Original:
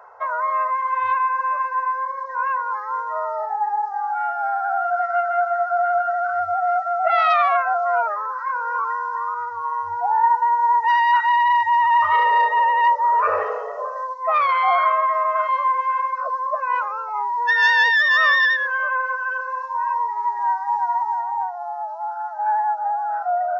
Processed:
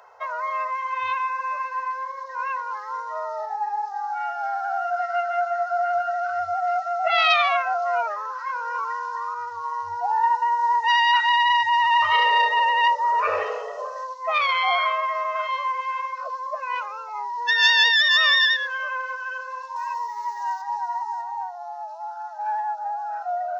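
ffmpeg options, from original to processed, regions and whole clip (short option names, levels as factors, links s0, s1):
-filter_complex "[0:a]asettb=1/sr,asplit=3[s0][s1][s2];[s0]atrim=end=19.764[s3];[s1]atrim=start=19.76:end=20.62,asetpts=PTS-STARTPTS,afade=t=in:d=0.004:c=qsin,afade=t=out:st=0.856:d=0.004:c=qsin,highpass=190,aemphasis=mode=production:type=bsi[s4];[s2]atrim=start=20.616[s5];[s3][s4]acrossfade=d=0.004:c1=hsin:c2=qsin[s6];[s6][s5]acrossfade=d=0.004:c1=qsin:c2=hsin,highshelf=f=2100:t=q:w=1.5:g=11,dynaudnorm=f=260:g=31:m=1.68,volume=0.668"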